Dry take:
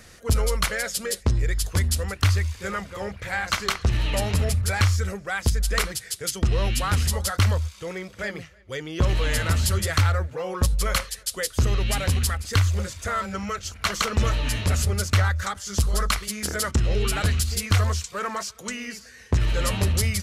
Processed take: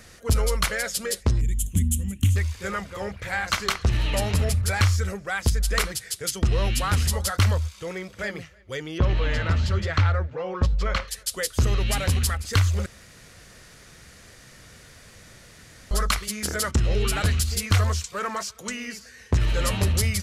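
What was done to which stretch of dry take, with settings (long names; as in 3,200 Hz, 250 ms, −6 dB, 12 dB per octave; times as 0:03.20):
0:01.41–0:02.36: drawn EQ curve 130 Hz 0 dB, 230 Hz +10 dB, 460 Hz −19 dB, 1,400 Hz −25 dB, 3,100 Hz −3 dB, 4,800 Hz −25 dB, 6,900 Hz +1 dB
0:08.98–0:11.08: high-frequency loss of the air 180 metres
0:12.86–0:15.91: fill with room tone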